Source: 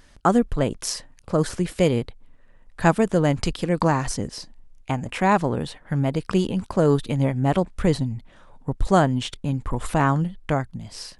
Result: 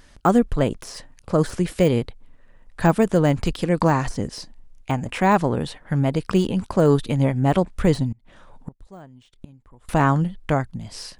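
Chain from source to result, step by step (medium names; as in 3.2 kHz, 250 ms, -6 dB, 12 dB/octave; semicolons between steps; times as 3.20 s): de-esser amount 75%; 8.12–9.89 s: inverted gate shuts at -24 dBFS, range -26 dB; trim +2 dB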